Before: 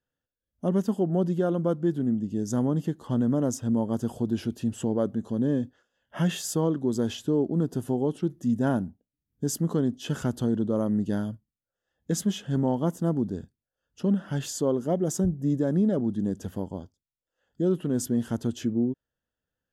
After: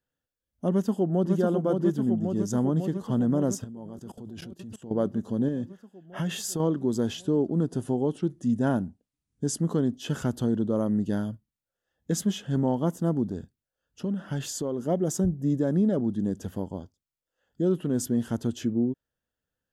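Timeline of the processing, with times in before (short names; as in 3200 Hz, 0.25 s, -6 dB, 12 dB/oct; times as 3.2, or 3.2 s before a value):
0.7–1.32 echo throw 0.55 s, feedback 75%, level -4 dB
3.64–4.91 level quantiser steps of 20 dB
5.48–6.6 compressor, threshold -25 dBFS
7.19–9.65 careless resampling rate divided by 2×, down none, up filtered
13.28–14.85 compressor, threshold -25 dBFS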